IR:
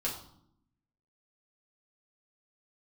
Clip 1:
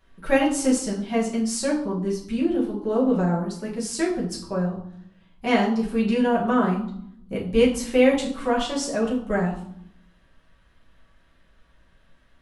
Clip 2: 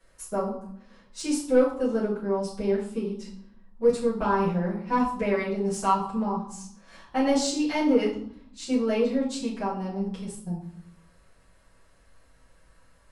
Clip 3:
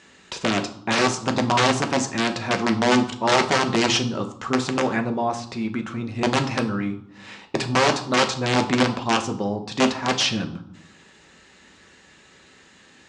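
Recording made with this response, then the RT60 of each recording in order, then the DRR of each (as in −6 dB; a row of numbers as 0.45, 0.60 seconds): 1; 0.70, 0.70, 0.70 seconds; −5.0, −10.5, 4.5 decibels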